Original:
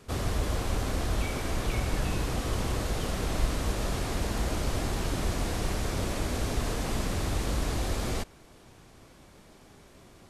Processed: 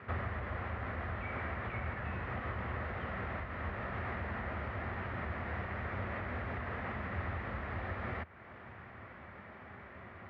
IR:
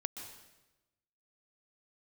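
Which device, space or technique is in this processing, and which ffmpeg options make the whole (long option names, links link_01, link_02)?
bass amplifier: -af "acompressor=threshold=-41dB:ratio=3,highpass=frequency=73:width=0.5412,highpass=frequency=73:width=1.3066,equalizer=frequency=81:width_type=q:width=4:gain=3,equalizer=frequency=150:width_type=q:width=4:gain=-8,equalizer=frequency=300:width_type=q:width=4:gain=-10,equalizer=frequency=440:width_type=q:width=4:gain=-5,equalizer=frequency=1300:width_type=q:width=4:gain=5,equalizer=frequency=1900:width_type=q:width=4:gain=9,lowpass=frequency=2300:width=0.5412,lowpass=frequency=2300:width=1.3066,volume=5dB"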